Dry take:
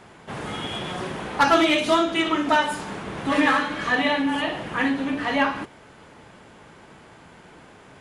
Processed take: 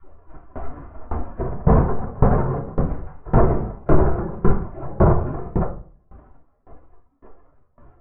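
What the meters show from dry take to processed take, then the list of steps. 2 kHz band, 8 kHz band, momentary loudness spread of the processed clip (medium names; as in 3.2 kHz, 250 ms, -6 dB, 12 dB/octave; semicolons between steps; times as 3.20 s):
-16.5 dB, under -40 dB, 19 LU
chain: CVSD coder 16 kbps; reverb removal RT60 0.61 s; spectral gate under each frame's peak -20 dB weak; compression 1.5:1, threshold -40 dBFS, peak gain reduction 4 dB; Bessel low-pass 730 Hz, order 6; tilt EQ -2 dB/octave; simulated room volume 910 m³, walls furnished, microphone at 3.1 m; loudness maximiser +28.5 dB; sawtooth tremolo in dB decaying 1.8 Hz, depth 25 dB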